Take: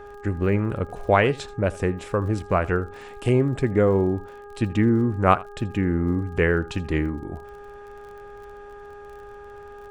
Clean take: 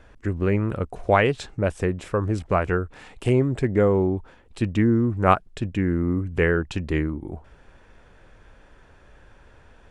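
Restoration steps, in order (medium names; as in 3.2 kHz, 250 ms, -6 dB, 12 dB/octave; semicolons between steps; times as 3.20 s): de-click; de-hum 409.1 Hz, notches 4; inverse comb 81 ms -20 dB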